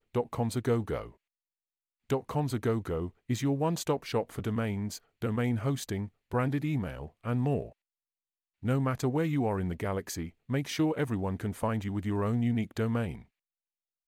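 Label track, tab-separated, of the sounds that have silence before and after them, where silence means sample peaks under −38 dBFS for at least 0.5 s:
2.100000	7.680000	sound
8.630000	13.180000	sound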